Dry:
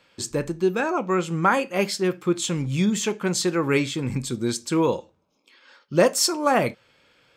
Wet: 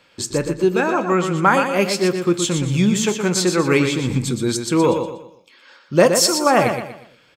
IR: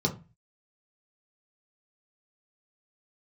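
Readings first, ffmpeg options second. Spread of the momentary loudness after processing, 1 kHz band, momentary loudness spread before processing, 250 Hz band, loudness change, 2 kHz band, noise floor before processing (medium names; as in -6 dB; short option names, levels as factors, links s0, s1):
8 LU, +5.5 dB, 7 LU, +5.5 dB, +5.5 dB, +5.5 dB, -68 dBFS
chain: -af "aecho=1:1:120|240|360|480:0.447|0.161|0.0579|0.0208,volume=1.68"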